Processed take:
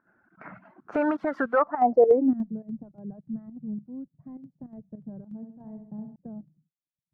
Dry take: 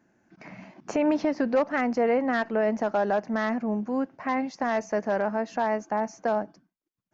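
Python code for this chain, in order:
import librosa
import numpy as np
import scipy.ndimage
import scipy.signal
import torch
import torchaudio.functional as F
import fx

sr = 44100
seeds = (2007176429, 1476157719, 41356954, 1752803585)

y = fx.crossing_spikes(x, sr, level_db=-23.0, at=(0.92, 1.59))
y = fx.dereverb_blind(y, sr, rt60_s=1.5)
y = fx.filter_sweep_lowpass(y, sr, from_hz=1400.0, to_hz=150.0, start_s=1.58, end_s=2.6, q=6.5)
y = fx.volume_shaper(y, sr, bpm=103, per_beat=2, depth_db=-13, release_ms=66.0, shape='slow start')
y = fx.room_flutter(y, sr, wall_m=11.4, rt60_s=0.63, at=(5.36, 6.16))
y = y * librosa.db_to_amplitude(-1.5)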